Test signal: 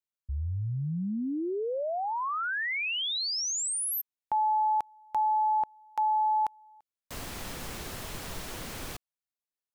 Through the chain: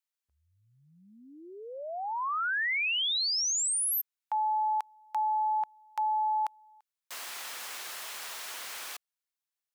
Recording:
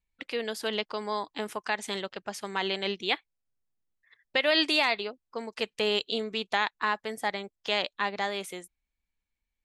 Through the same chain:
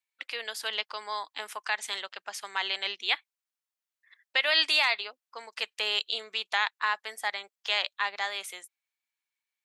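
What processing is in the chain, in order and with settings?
high-pass filter 1,000 Hz 12 dB per octave
level +2 dB

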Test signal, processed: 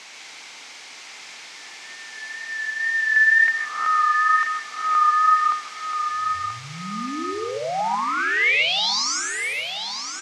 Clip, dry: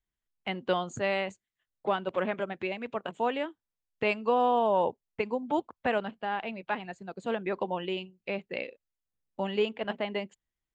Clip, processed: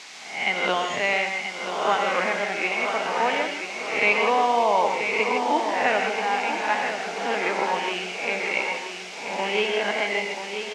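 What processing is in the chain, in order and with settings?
peak hold with a rise ahead of every peak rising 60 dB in 0.74 s
low-pass that shuts in the quiet parts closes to 1,400 Hz, open at −26.5 dBFS
tape wow and flutter 28 cents
in parallel at −5 dB: bit-depth reduction 6 bits, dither triangular
on the sum: background noise blue −37 dBFS
loudspeaker in its box 290–6,100 Hz, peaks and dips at 360 Hz −4 dB, 550 Hz −5 dB, 830 Hz +3 dB, 2,200 Hz +8 dB
on a send: repeating echo 982 ms, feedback 44%, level −8 dB
on the sum: reverb whose tail is shaped and stops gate 180 ms rising, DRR 4 dB

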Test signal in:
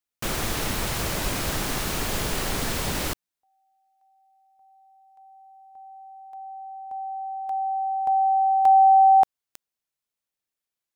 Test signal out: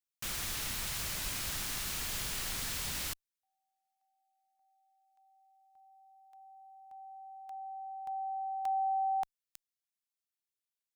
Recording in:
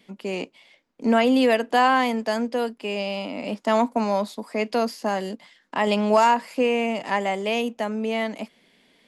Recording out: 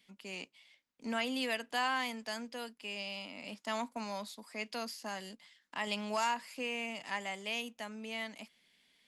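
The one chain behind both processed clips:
guitar amp tone stack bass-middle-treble 5-5-5

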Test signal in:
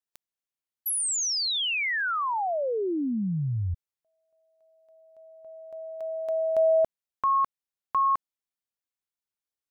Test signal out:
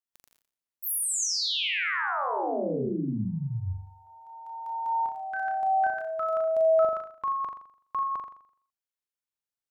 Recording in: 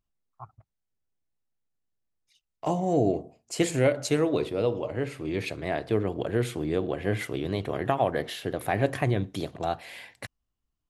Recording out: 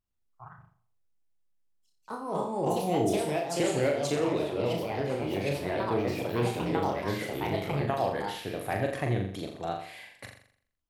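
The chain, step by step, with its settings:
flutter between parallel walls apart 7.2 metres, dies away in 0.58 s
delay with pitch and tempo change per echo 109 ms, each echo +3 semitones, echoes 2
level −5.5 dB

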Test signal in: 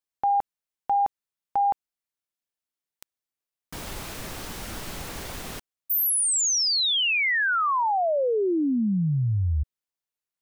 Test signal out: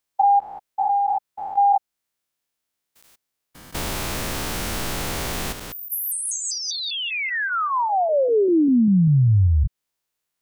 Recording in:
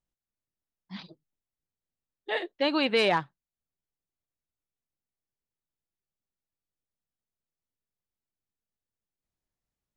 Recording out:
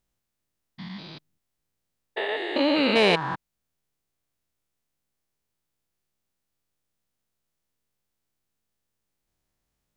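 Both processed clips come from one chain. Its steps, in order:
spectrum averaged block by block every 200 ms
in parallel at −3 dB: downward compressor, threshold −36 dBFS
on the sum: level +7 dB

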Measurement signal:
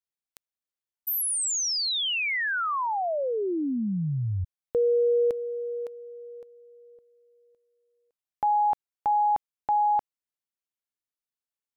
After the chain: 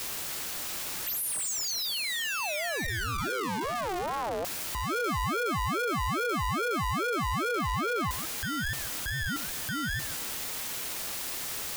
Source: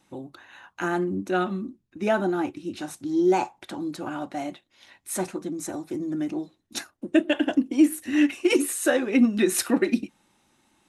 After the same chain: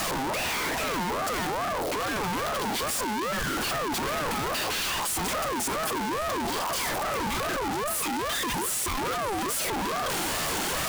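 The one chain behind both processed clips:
sign of each sample alone
echo through a band-pass that steps 145 ms, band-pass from 580 Hz, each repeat 1.4 octaves, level −8 dB
ring modulator whose carrier an LFO sweeps 750 Hz, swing 30%, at 2.4 Hz

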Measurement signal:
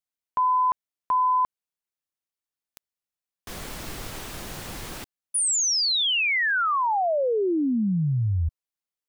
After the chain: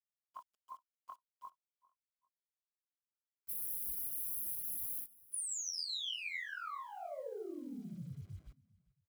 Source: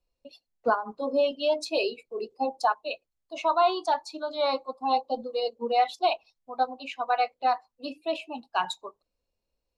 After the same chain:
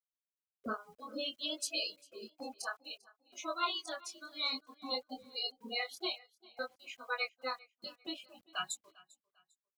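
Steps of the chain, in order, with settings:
spectral dynamics exaggerated over time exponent 2
noise gate −52 dBFS, range −31 dB
gate on every frequency bin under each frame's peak −10 dB weak
high-shelf EQ 5,400 Hz +10.5 dB
in parallel at +1.5 dB: downward compressor 10 to 1, threshold −51 dBFS
on the sum: chorus effect 0.58 Hz, delay 19.5 ms, depth 4.7 ms
bit-depth reduction 12 bits, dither none
notch comb filter 900 Hz
repeating echo 398 ms, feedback 32%, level −23 dB
level +4 dB

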